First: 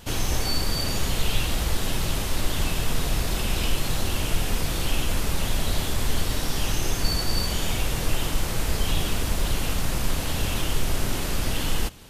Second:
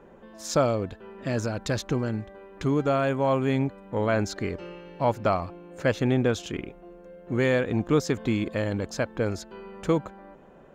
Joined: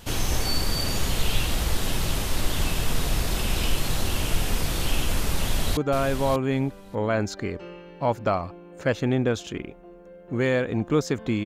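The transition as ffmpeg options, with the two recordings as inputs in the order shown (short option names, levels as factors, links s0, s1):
-filter_complex "[0:a]apad=whole_dur=11.45,atrim=end=11.45,atrim=end=5.772[s0];[1:a]atrim=start=2.758:end=8.44[s1];[s0][s1]acrossfade=d=0.004:c1=hsin:c2=hsin,asplit=2[s2][s3];[s3]afade=t=in:st=5.33:d=0.01,afade=t=out:st=5.77:d=0.01,aecho=0:1:590|1180:0.446684|0.0446684[s4];[s2][s4]amix=inputs=2:normalize=0"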